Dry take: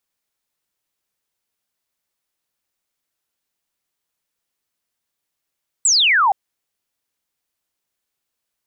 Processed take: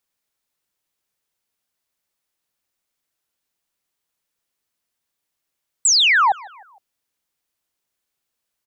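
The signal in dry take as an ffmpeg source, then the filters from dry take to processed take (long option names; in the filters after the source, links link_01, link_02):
-f lavfi -i "aevalsrc='0.266*clip(t/0.002,0,1)*clip((0.47-t)/0.002,0,1)*sin(2*PI*8200*0.47/log(740/8200)*(exp(log(740/8200)*t/0.47)-1))':duration=0.47:sample_rate=44100"
-filter_complex "[0:a]asplit=2[link_01][link_02];[link_02]adelay=154,lowpass=frequency=3700:poles=1,volume=-22dB,asplit=2[link_03][link_04];[link_04]adelay=154,lowpass=frequency=3700:poles=1,volume=0.49,asplit=2[link_05][link_06];[link_06]adelay=154,lowpass=frequency=3700:poles=1,volume=0.49[link_07];[link_01][link_03][link_05][link_07]amix=inputs=4:normalize=0"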